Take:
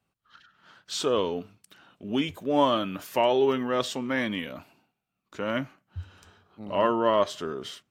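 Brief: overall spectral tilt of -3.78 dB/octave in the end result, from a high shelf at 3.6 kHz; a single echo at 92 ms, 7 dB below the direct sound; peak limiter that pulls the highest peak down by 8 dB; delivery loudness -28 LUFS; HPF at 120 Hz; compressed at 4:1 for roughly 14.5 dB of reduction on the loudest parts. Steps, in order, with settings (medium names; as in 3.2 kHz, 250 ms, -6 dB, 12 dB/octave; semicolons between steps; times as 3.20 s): high-pass 120 Hz; treble shelf 3.6 kHz +3.5 dB; compression 4:1, threshold -36 dBFS; peak limiter -29.5 dBFS; delay 92 ms -7 dB; trim +12.5 dB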